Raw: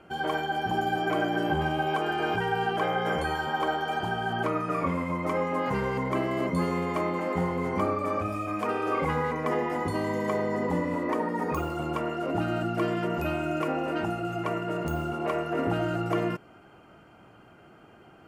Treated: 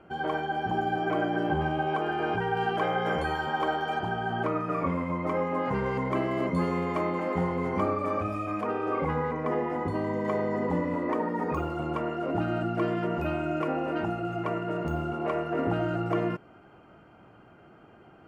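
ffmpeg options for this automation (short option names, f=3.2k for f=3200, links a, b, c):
-af "asetnsamples=n=441:p=0,asendcmd='2.57 lowpass f 3900;3.99 lowpass f 2000;5.86 lowpass f 3400;8.61 lowpass f 1300;10.25 lowpass f 2200',lowpass=f=1.8k:p=1"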